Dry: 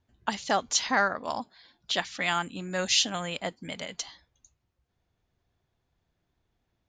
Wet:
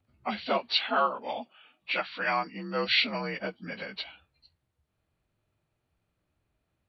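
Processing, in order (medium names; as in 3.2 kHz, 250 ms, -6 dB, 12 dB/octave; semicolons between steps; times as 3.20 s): frequency axis rescaled in octaves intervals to 87%; 0.57–2.84 s: high-pass 410 Hz -> 180 Hz 6 dB/octave; trim +1.5 dB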